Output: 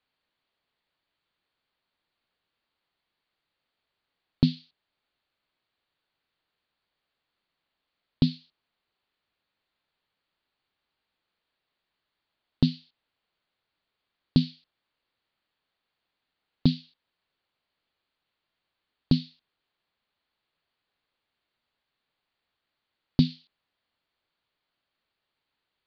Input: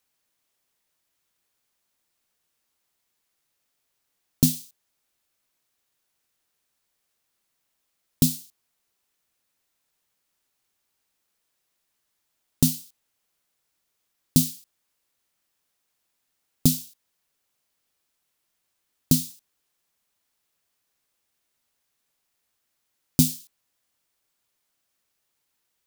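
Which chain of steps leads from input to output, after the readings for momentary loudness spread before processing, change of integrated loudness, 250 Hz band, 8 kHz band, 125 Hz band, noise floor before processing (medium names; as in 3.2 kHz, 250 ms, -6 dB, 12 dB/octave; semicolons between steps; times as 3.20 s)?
13 LU, -4.0 dB, -1.0 dB, under -35 dB, -1.0 dB, -77 dBFS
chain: Chebyshev low-pass 4.5 kHz, order 6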